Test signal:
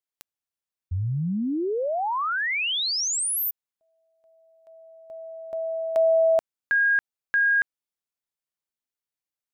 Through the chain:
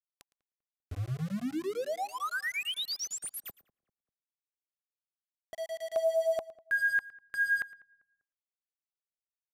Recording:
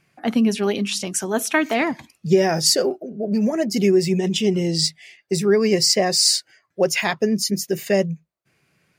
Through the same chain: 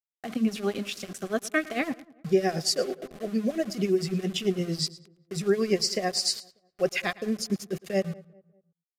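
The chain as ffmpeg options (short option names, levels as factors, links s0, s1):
-filter_complex "[0:a]highshelf=f=8600:g=-10,tremolo=f=8.9:d=0.79,aeval=exprs='val(0)*gte(abs(val(0)),0.0178)':c=same,asuperstop=centerf=910:order=8:qfactor=5.2,asplit=2[s0][s1];[s1]aecho=0:1:111:0.1[s2];[s0][s2]amix=inputs=2:normalize=0,aresample=32000,aresample=44100,asplit=2[s3][s4];[s4]adelay=197,lowpass=f=1300:p=1,volume=0.0794,asplit=2[s5][s6];[s6]adelay=197,lowpass=f=1300:p=1,volume=0.42,asplit=2[s7][s8];[s8]adelay=197,lowpass=f=1300:p=1,volume=0.42[s9];[s5][s7][s9]amix=inputs=3:normalize=0[s10];[s3][s10]amix=inputs=2:normalize=0,volume=0.596"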